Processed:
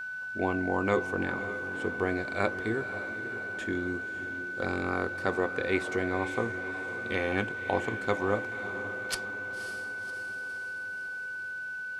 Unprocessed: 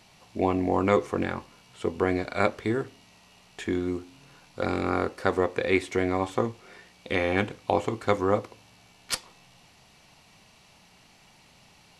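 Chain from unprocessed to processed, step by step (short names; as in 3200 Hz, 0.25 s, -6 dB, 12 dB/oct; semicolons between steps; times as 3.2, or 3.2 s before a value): whine 1500 Hz -30 dBFS; diffused feedback echo 0.551 s, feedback 59%, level -10.5 dB; gain -5 dB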